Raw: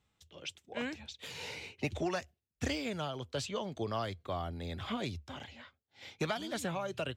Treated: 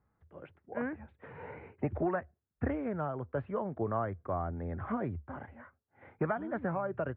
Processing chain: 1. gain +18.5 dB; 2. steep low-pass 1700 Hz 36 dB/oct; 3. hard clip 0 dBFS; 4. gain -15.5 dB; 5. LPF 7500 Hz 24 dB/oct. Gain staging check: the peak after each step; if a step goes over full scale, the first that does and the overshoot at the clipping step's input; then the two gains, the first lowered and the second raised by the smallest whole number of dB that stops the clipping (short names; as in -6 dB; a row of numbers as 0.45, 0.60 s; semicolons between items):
-3.5, -5.0, -5.0, -20.5, -20.5 dBFS; no overload